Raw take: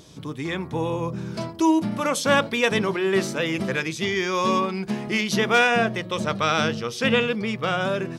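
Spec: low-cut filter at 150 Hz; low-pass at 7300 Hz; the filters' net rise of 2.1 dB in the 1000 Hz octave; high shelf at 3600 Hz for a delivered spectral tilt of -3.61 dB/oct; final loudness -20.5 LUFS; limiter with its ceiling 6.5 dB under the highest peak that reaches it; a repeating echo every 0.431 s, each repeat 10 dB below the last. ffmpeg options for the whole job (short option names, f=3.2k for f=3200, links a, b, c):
-af "highpass=150,lowpass=7.3k,equalizer=f=1k:t=o:g=3.5,highshelf=f=3.6k:g=-7.5,alimiter=limit=-12.5dB:level=0:latency=1,aecho=1:1:431|862|1293|1724:0.316|0.101|0.0324|0.0104,volume=4dB"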